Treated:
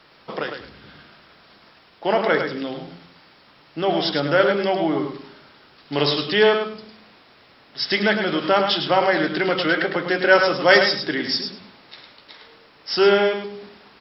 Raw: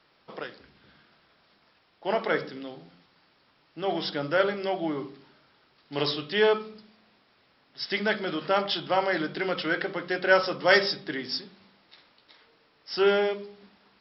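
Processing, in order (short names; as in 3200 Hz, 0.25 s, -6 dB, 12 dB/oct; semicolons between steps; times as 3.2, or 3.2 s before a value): in parallel at +2 dB: compressor, threshold -36 dBFS, peak gain reduction 20 dB; on the sum: feedback echo 0.105 s, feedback 16%, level -7 dB; gain +4.5 dB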